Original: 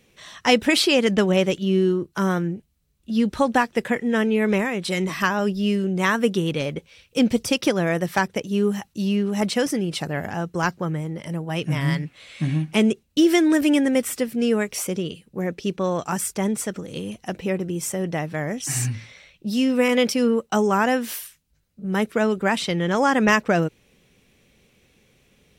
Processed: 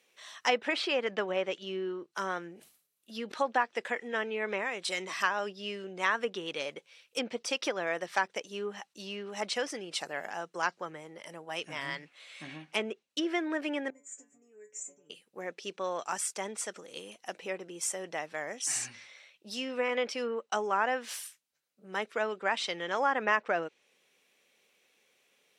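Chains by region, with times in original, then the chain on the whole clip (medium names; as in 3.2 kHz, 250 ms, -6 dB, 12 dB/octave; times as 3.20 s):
2.42–3.34 s: peaking EQ 12 kHz +11 dB 0.65 oct + band-stop 930 Hz, Q 23 + decay stretcher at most 120 dB/s
13.90–15.10 s: FFT filter 110 Hz 0 dB, 200 Hz +12 dB, 640 Hz -1 dB, 990 Hz -15 dB, 1.8 kHz -3 dB, 3.2 kHz -19 dB, 4.5 kHz -30 dB, 7 kHz +13 dB, 11 kHz -29 dB + compression 5:1, threshold -25 dBFS + inharmonic resonator 140 Hz, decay 0.33 s, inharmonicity 0.002
whole clip: low-pass that closes with the level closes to 2 kHz, closed at -14 dBFS; high-pass 560 Hz 12 dB/octave; dynamic bell 8.5 kHz, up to +6 dB, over -47 dBFS, Q 0.71; trim -6.5 dB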